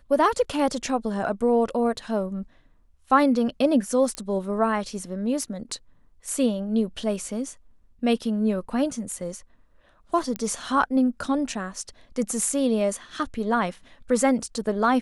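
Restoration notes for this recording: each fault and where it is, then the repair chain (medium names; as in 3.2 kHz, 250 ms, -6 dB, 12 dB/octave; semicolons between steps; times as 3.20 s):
4.15 s: pop -15 dBFS
10.36 s: pop -14 dBFS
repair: de-click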